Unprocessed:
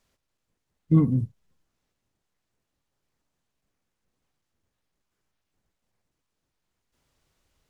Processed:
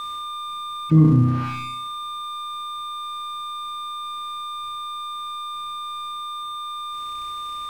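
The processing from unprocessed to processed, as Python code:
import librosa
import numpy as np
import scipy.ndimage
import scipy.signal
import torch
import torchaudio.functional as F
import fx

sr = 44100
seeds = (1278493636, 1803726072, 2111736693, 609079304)

y = fx.room_flutter(x, sr, wall_m=5.5, rt60_s=0.72)
y = y + 10.0 ** (-39.0 / 20.0) * np.sin(2.0 * np.pi * 1200.0 * np.arange(len(y)) / sr)
y = np.sign(y) * np.maximum(np.abs(y) - 10.0 ** (-43.5 / 20.0), 0.0)
y = fx.env_flatten(y, sr, amount_pct=50)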